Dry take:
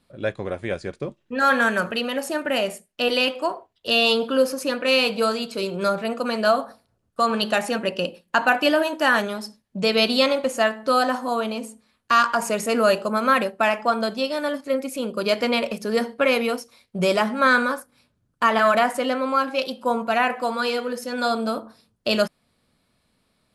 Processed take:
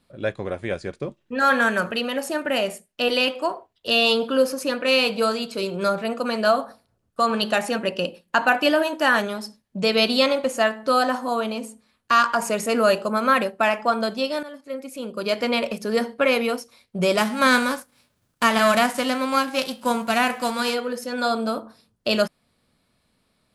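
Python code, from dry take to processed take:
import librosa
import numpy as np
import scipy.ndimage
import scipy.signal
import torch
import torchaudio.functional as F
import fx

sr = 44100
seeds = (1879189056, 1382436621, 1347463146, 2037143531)

y = fx.envelope_flatten(x, sr, power=0.6, at=(17.17, 20.73), fade=0.02)
y = fx.edit(y, sr, fx.fade_in_from(start_s=14.43, length_s=1.21, floor_db=-15.0), tone=tone)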